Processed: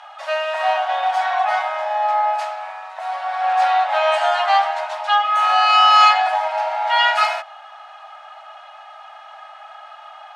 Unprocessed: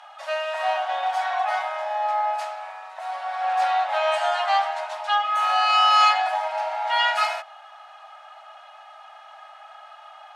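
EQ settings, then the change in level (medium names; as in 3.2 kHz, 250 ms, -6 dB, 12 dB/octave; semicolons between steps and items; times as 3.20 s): high-pass 500 Hz 24 dB/octave; treble shelf 8.1 kHz -8 dB; +5.5 dB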